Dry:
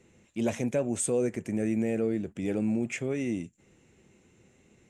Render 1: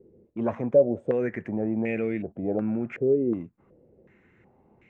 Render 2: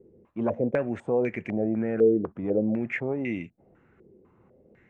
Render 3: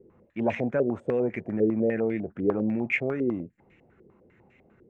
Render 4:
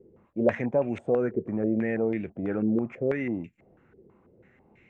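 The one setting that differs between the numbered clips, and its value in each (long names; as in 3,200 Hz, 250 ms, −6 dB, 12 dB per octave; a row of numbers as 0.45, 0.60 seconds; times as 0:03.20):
low-pass on a step sequencer, speed: 2.7, 4, 10, 6.1 Hertz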